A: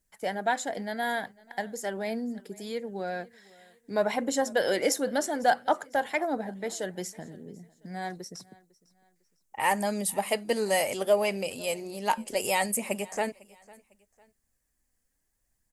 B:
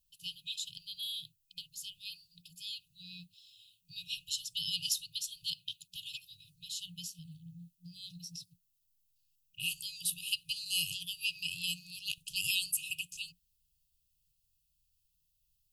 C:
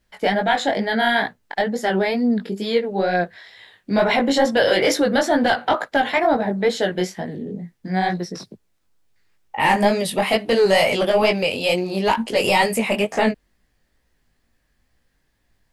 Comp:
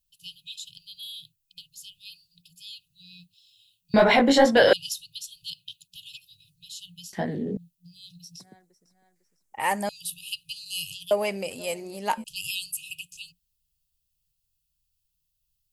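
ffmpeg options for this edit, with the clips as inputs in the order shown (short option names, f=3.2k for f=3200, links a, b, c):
-filter_complex "[2:a]asplit=2[a][b];[0:a]asplit=2[c][d];[1:a]asplit=5[e][f][g][h][i];[e]atrim=end=3.942[j];[a]atrim=start=3.938:end=4.732[k];[f]atrim=start=4.728:end=7.132[l];[b]atrim=start=7.128:end=7.572[m];[g]atrim=start=7.568:end=8.402[n];[c]atrim=start=8.398:end=9.892[o];[h]atrim=start=9.888:end=11.112[p];[d]atrim=start=11.108:end=12.242[q];[i]atrim=start=12.238[r];[j][k]acrossfade=d=0.004:c1=hsin:c2=hsin[s];[s][l]acrossfade=d=0.004:c1=hsin:c2=hsin[t];[t][m]acrossfade=d=0.004:c1=hsin:c2=hsin[u];[u][n]acrossfade=d=0.004:c1=hsin:c2=hsin[v];[v][o]acrossfade=d=0.004:c1=hsin:c2=hsin[w];[w][p]acrossfade=d=0.004:c1=hsin:c2=hsin[x];[x][q]acrossfade=d=0.004:c1=hsin:c2=hsin[y];[y][r]acrossfade=d=0.004:c1=hsin:c2=hsin"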